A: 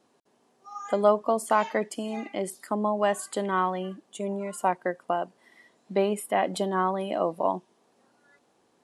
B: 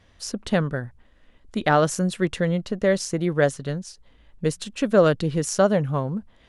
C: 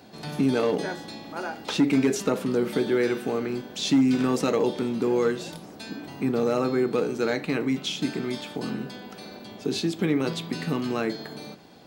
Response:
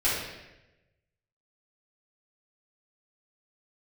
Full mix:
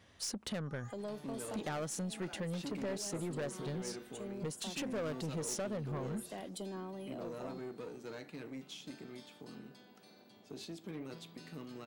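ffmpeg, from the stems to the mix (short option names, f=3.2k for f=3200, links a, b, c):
-filter_complex "[0:a]acrossover=split=450|3000[a][b][c];[b]acompressor=threshold=-40dB:ratio=6[d];[a][d][c]amix=inputs=3:normalize=0,volume=-11.5dB[e];[1:a]volume=-4dB[f];[2:a]aeval=exprs='(tanh(8.91*val(0)+0.55)-tanh(0.55))/8.91':c=same,adelay=850,volume=-17dB[g];[e][f]amix=inputs=2:normalize=0,volume=17dB,asoftclip=hard,volume=-17dB,acompressor=threshold=-33dB:ratio=6,volume=0dB[h];[g][h]amix=inputs=2:normalize=0,highpass=95,highshelf=f=5.8k:g=4.5,aeval=exprs='(tanh(44.7*val(0)+0.1)-tanh(0.1))/44.7':c=same"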